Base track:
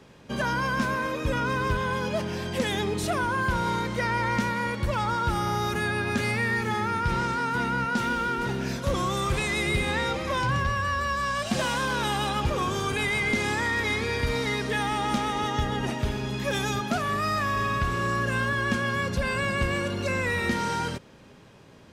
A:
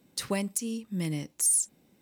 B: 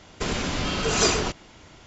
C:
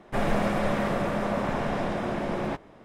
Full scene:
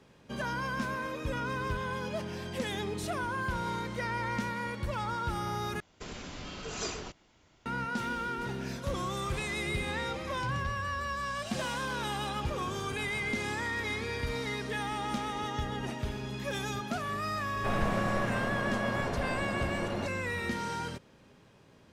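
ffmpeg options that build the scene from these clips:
ffmpeg -i bed.wav -i cue0.wav -i cue1.wav -i cue2.wav -filter_complex "[0:a]volume=-7.5dB,asplit=2[link_01][link_02];[link_01]atrim=end=5.804[link_03];[2:a]atrim=end=1.86,asetpts=PTS-STARTPTS,volume=-15.5dB[link_04];[link_02]atrim=start=7.656[link_05];[3:a]atrim=end=2.84,asetpts=PTS-STARTPTS,volume=-6.5dB,afade=type=in:duration=0.004:curve=hsin,afade=type=out:start_time=2.836:duration=0.004:curve=hsin,adelay=17510[link_06];[link_03][link_04]acrossfade=duration=0.004:curve1=hsin:curve2=hsin[link_07];[link_07][link_05]acrossfade=duration=0.004:curve1=hsin:curve2=hsin[link_08];[link_08][link_06]amix=inputs=2:normalize=0" out.wav

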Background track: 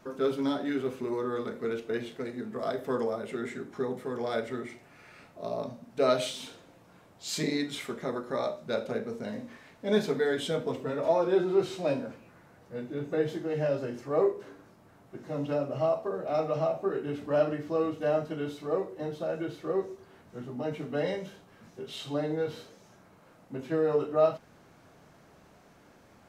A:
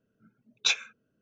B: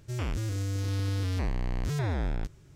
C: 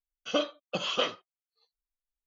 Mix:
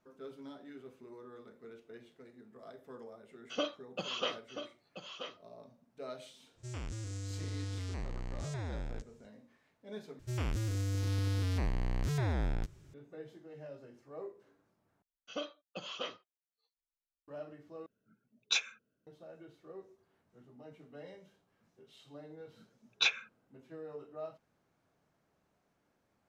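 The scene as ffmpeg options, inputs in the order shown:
ffmpeg -i bed.wav -i cue0.wav -i cue1.wav -i cue2.wav -filter_complex "[3:a]asplit=2[link_01][link_02];[2:a]asplit=2[link_03][link_04];[1:a]asplit=2[link_05][link_06];[0:a]volume=-19.5dB[link_07];[link_01]aecho=1:1:982:0.355[link_08];[link_03]lowpass=frequency=7700:width_type=q:width=2.1[link_09];[link_05]lowshelf=frequency=160:gain=-4[link_10];[link_06]lowpass=3800[link_11];[link_07]asplit=4[link_12][link_13][link_14][link_15];[link_12]atrim=end=10.194[link_16];[link_04]atrim=end=2.75,asetpts=PTS-STARTPTS,volume=-3dB[link_17];[link_13]atrim=start=12.936:end=15.024[link_18];[link_02]atrim=end=2.26,asetpts=PTS-STARTPTS,volume=-12dB[link_19];[link_14]atrim=start=17.276:end=17.864[link_20];[link_10]atrim=end=1.21,asetpts=PTS-STARTPTS,volume=-6dB[link_21];[link_15]atrim=start=19.066[link_22];[link_08]atrim=end=2.26,asetpts=PTS-STARTPTS,volume=-7dB,afade=type=in:duration=0.004:curve=hsin,afade=type=out:start_time=2.256:duration=0.004:curve=hsin,adelay=3240[link_23];[link_09]atrim=end=2.75,asetpts=PTS-STARTPTS,volume=-10dB,afade=type=in:duration=0.05,afade=type=out:start_time=2.7:duration=0.05,adelay=6550[link_24];[link_11]atrim=end=1.21,asetpts=PTS-STARTPTS,volume=-1.5dB,afade=type=in:duration=0.004:curve=hsin,afade=type=out:start_time=1.206:duration=0.004:curve=hsin,adelay=22360[link_25];[link_16][link_17]acrossfade=duration=0.004:curve1=hsin:curve2=hsin[link_26];[link_26][link_18]acrossfade=duration=0.004:curve1=hsin:curve2=hsin[link_27];[link_27][link_19]acrossfade=duration=0.004:curve1=hsin:curve2=hsin[link_28];[link_28][link_20]acrossfade=duration=0.004:curve1=hsin:curve2=hsin[link_29];[link_29][link_21]acrossfade=duration=0.004:curve1=hsin:curve2=hsin[link_30];[link_30][link_22]acrossfade=duration=0.004:curve1=hsin:curve2=hsin[link_31];[link_31][link_23][link_24][link_25]amix=inputs=4:normalize=0" out.wav

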